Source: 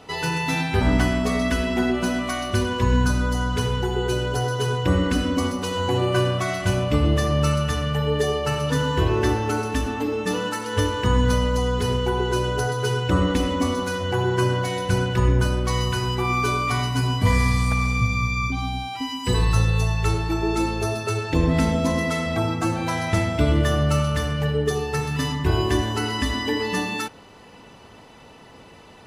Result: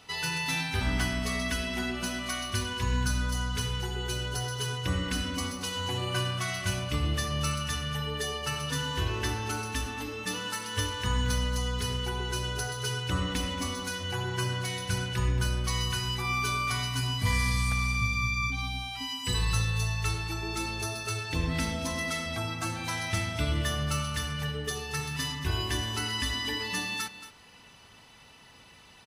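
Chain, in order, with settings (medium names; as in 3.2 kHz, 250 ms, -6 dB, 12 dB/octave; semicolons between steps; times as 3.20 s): amplifier tone stack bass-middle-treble 5-5-5; band-stop 7.2 kHz, Q 12; on a send: delay 227 ms -13.5 dB; on the sum: trim +5.5 dB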